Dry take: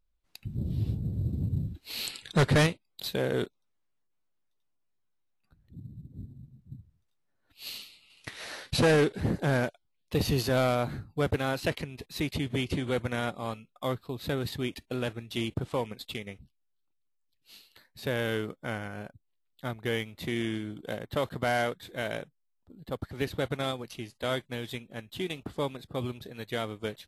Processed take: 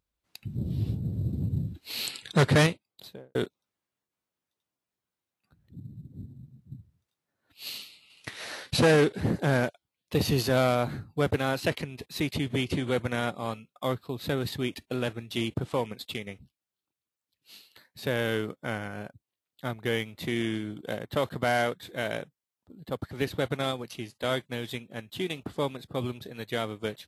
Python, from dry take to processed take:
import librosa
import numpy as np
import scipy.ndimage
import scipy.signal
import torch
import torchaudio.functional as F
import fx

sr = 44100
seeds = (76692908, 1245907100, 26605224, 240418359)

y = fx.studio_fade_out(x, sr, start_s=2.7, length_s=0.65)
y = scipy.signal.sosfilt(scipy.signal.butter(2, 82.0, 'highpass', fs=sr, output='sos'), y)
y = y * 10.0 ** (2.0 / 20.0)